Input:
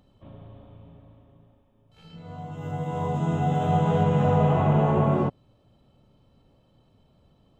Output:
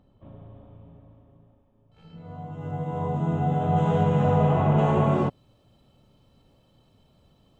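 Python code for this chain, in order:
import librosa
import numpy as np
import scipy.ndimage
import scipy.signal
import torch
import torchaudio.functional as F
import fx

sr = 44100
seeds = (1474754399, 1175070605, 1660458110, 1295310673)

y = fx.high_shelf(x, sr, hz=2600.0, db=fx.steps((0.0, -12.0), (3.76, -2.5), (4.77, 7.0)))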